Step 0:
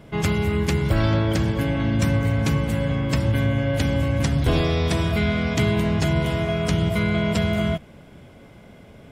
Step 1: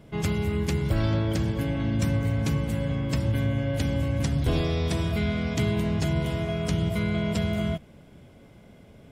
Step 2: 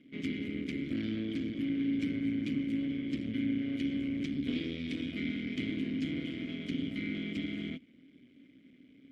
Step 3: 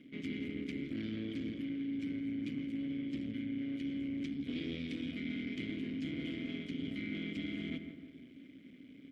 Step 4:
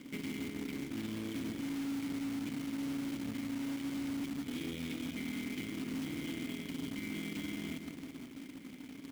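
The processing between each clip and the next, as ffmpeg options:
-af "equalizer=f=1.4k:t=o:w=2.5:g=-4,volume=-4dB"
-filter_complex "[0:a]aeval=exprs='max(val(0),0)':c=same,asplit=3[a][b][c];[a]bandpass=f=270:t=q:w=8,volume=0dB[d];[b]bandpass=f=2.29k:t=q:w=8,volume=-6dB[e];[c]bandpass=f=3.01k:t=q:w=8,volume=-9dB[f];[d][e][f]amix=inputs=3:normalize=0,volume=8dB"
-filter_complex "[0:a]asplit=2[a][b];[b]adelay=166,lowpass=f=2.2k:p=1,volume=-13dB,asplit=2[c][d];[d]adelay=166,lowpass=f=2.2k:p=1,volume=0.49,asplit=2[e][f];[f]adelay=166,lowpass=f=2.2k:p=1,volume=0.49,asplit=2[g][h];[h]adelay=166,lowpass=f=2.2k:p=1,volume=0.49,asplit=2[i][j];[j]adelay=166,lowpass=f=2.2k:p=1,volume=0.49[k];[a][c][e][g][i][k]amix=inputs=6:normalize=0,areverse,acompressor=threshold=-40dB:ratio=6,areverse,volume=3.5dB"
-af "alimiter=level_in=13dB:limit=-24dB:level=0:latency=1:release=341,volume=-13dB,acrusher=bits=2:mode=log:mix=0:aa=0.000001,volume=5.5dB"

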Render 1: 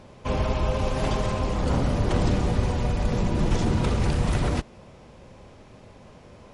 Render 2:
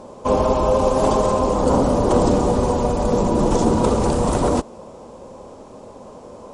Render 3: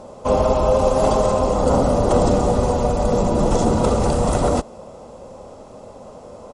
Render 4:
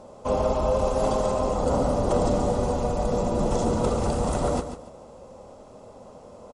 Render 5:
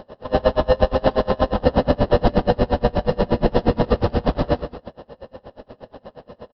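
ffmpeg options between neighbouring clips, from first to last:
-af "equalizer=f=125:t=o:w=1:g=-3,equalizer=f=250:t=o:w=1:g=8,equalizer=f=500:t=o:w=1:g=10,equalizer=f=1k:t=o:w=1:g=11,equalizer=f=2k:t=o:w=1:g=-7,equalizer=f=8k:t=o:w=1:g=12"
-af "aecho=1:1:1.5:0.32"
-af "aecho=1:1:143|286|429:0.316|0.0885|0.0248,volume=-7dB"
-filter_complex "[0:a]asplit=2[a][b];[b]acrusher=samples=19:mix=1:aa=0.000001,volume=-6.5dB[c];[a][c]amix=inputs=2:normalize=0,aresample=11025,aresample=44100,aeval=exprs='val(0)*pow(10,-29*(0.5-0.5*cos(2*PI*8.4*n/s))/20)':c=same,volume=8dB"

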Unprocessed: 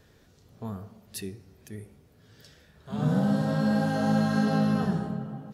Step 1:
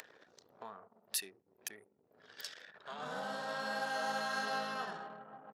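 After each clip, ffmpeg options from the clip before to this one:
-af "acompressor=mode=upward:threshold=-28dB:ratio=2.5,anlmdn=0.251,highpass=920,volume=-1dB"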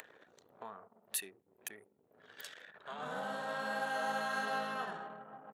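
-af "equalizer=f=5.1k:w=2.7:g=-13,volume=1dB"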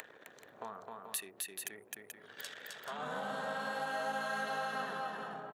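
-filter_complex "[0:a]asplit=2[a][b];[b]aecho=0:1:261|433:0.631|0.355[c];[a][c]amix=inputs=2:normalize=0,acompressor=threshold=-42dB:ratio=2,volume=3.5dB"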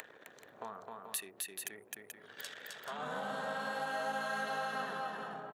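-af anull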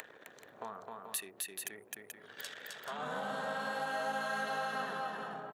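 -af "asoftclip=type=tanh:threshold=-20.5dB,volume=1dB"

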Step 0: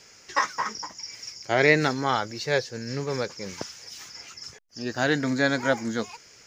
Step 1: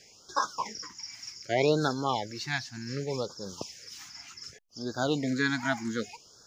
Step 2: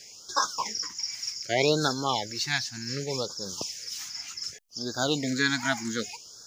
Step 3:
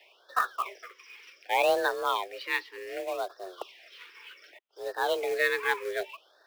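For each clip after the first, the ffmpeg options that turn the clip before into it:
-af "afftfilt=real='re*(1-between(b*sr/1024,440*pow(2400/440,0.5+0.5*sin(2*PI*0.66*pts/sr))/1.41,440*pow(2400/440,0.5+0.5*sin(2*PI*0.66*pts/sr))*1.41))':imag='im*(1-between(b*sr/1024,440*pow(2400/440,0.5+0.5*sin(2*PI*0.66*pts/sr))/1.41,440*pow(2400/440,0.5+0.5*sin(2*PI*0.66*pts/sr))*1.41))':win_size=1024:overlap=0.75,volume=-3.5dB"
-af "highshelf=f=2.9k:g=11.5"
-af "highpass=f=190:t=q:w=0.5412,highpass=f=190:t=q:w=1.307,lowpass=f=3.2k:t=q:w=0.5176,lowpass=f=3.2k:t=q:w=0.7071,lowpass=f=3.2k:t=q:w=1.932,afreqshift=180,acrusher=bits=4:mode=log:mix=0:aa=0.000001"

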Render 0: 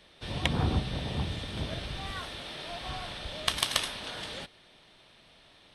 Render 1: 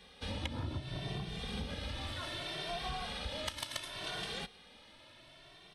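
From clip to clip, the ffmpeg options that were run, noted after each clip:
-filter_complex "[0:a]acompressor=threshold=-36dB:ratio=10,asplit=2[a][b];[b]adelay=2.1,afreqshift=0.67[c];[a][c]amix=inputs=2:normalize=1,volume=3.5dB"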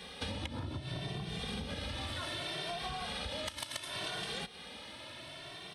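-af "highpass=64,equalizer=f=9k:w=5:g=4.5,acompressor=threshold=-46dB:ratio=10,volume=10dB"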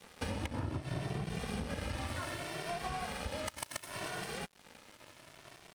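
-af "equalizer=f=3.6k:w=2.3:g=-14,aecho=1:1:91|182|273:0.141|0.0523|0.0193,aeval=exprs='sgn(val(0))*max(abs(val(0))-0.00355,0)':c=same,volume=5dB"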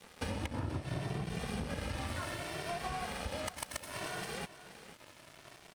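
-af "aecho=1:1:482:0.188"

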